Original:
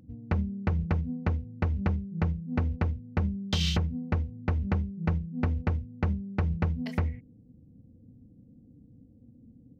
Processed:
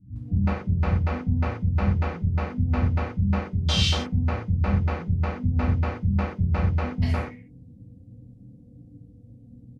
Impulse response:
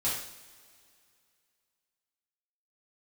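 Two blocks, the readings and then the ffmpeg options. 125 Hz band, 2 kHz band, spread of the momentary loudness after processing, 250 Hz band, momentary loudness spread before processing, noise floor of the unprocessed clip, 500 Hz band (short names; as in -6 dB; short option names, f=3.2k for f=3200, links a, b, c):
+6.0 dB, +5.5 dB, 3 LU, +4.0 dB, 3 LU, -56 dBFS, +5.5 dB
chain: -filter_complex "[0:a]acrossover=split=230[a][b];[b]adelay=160[c];[a][c]amix=inputs=2:normalize=0[d];[1:a]atrim=start_sample=2205,atrim=end_sample=6174[e];[d][e]afir=irnorm=-1:irlink=0" -ar 32000 -c:a ac3 -b:a 64k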